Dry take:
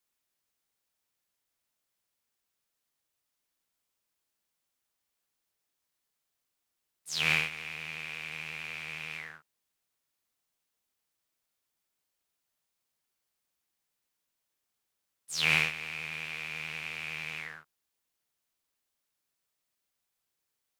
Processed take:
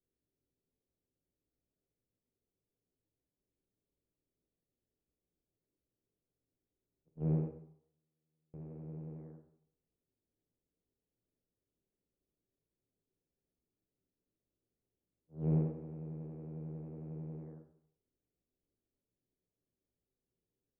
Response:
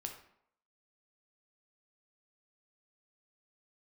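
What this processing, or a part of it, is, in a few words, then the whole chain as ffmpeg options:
next room: -filter_complex "[0:a]asettb=1/sr,asplit=3[a][b][c];[a]atrim=end=7.084[d];[b]atrim=start=7.08:end=8.54,asetpts=PTS-STARTPTS,afade=t=in:d=0.004:c=qsin,afade=t=out:st=1.456:d=0.004:c=qsin,agate=range=-40dB:threshold=-31dB:ratio=16:detection=peak[e];[c]atrim=start=8.536[f];[d][e]acrossfade=d=0.004:c1=hsin:c2=qsin[g];[g][f]acrossfade=d=0.004:c1=qsin:c2=hsin,lowpass=f=460:w=0.5412,lowpass=f=460:w=1.3066[h];[1:a]atrim=start_sample=2205[i];[h][i]afir=irnorm=-1:irlink=0,volume=9.5dB"

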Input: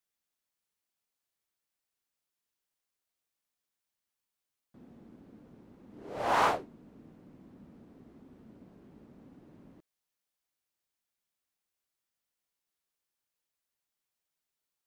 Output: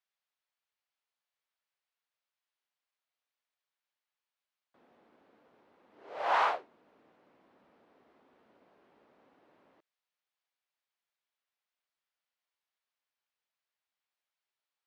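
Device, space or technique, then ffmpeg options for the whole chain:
DJ mixer with the lows and highs turned down: -filter_complex "[0:a]acrossover=split=490 4700:gain=0.0631 1 0.126[a][b][c];[a][b][c]amix=inputs=3:normalize=0,alimiter=limit=-18.5dB:level=0:latency=1:release=277,highpass=51,volume=1dB"

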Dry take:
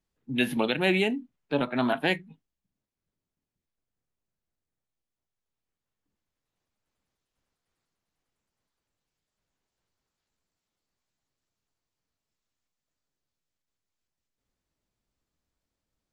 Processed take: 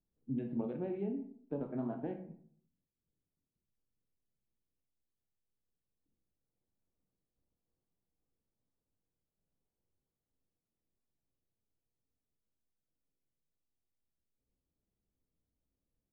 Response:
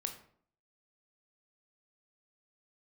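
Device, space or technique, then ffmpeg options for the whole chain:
television next door: -filter_complex "[0:a]acompressor=threshold=-30dB:ratio=4,lowpass=510[a];[1:a]atrim=start_sample=2205[b];[a][b]afir=irnorm=-1:irlink=0,volume=-1.5dB"

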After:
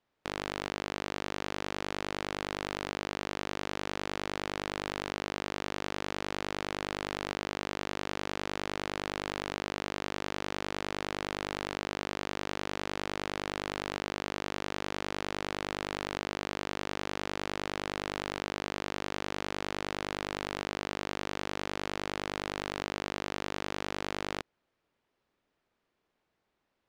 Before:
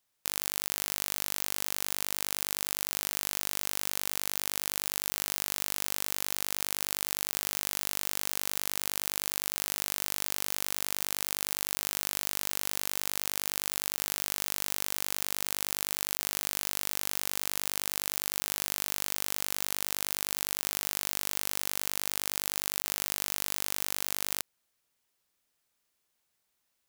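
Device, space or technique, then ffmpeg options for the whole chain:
phone in a pocket: -af "lowpass=3.9k,equalizer=f=350:t=o:w=1.4:g=4.5,highshelf=f=2.3k:g=-11,volume=6.5dB"

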